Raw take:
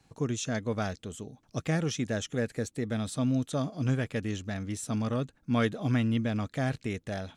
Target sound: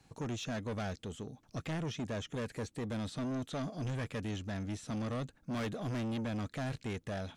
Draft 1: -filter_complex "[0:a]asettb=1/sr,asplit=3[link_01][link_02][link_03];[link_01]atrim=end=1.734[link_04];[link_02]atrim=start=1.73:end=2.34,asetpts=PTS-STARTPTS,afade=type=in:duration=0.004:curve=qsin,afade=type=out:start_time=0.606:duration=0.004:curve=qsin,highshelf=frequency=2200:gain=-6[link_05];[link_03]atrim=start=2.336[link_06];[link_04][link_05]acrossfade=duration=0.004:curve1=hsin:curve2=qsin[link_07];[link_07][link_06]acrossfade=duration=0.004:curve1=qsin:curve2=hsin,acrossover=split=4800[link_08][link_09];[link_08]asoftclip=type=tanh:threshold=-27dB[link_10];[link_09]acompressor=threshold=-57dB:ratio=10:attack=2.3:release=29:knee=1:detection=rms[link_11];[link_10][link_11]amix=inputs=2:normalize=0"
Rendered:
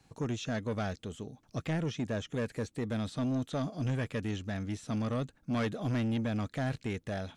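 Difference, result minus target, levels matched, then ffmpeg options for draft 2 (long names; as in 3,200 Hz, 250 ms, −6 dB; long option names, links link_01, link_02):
soft clipping: distortion −6 dB
-filter_complex "[0:a]asettb=1/sr,asplit=3[link_01][link_02][link_03];[link_01]atrim=end=1.734[link_04];[link_02]atrim=start=1.73:end=2.34,asetpts=PTS-STARTPTS,afade=type=in:duration=0.004:curve=qsin,afade=type=out:start_time=0.606:duration=0.004:curve=qsin,highshelf=frequency=2200:gain=-6[link_05];[link_03]atrim=start=2.336[link_06];[link_04][link_05]acrossfade=duration=0.004:curve1=hsin:curve2=qsin[link_07];[link_07][link_06]acrossfade=duration=0.004:curve1=qsin:curve2=hsin,acrossover=split=4800[link_08][link_09];[link_08]asoftclip=type=tanh:threshold=-34dB[link_10];[link_09]acompressor=threshold=-57dB:ratio=10:attack=2.3:release=29:knee=1:detection=rms[link_11];[link_10][link_11]amix=inputs=2:normalize=0"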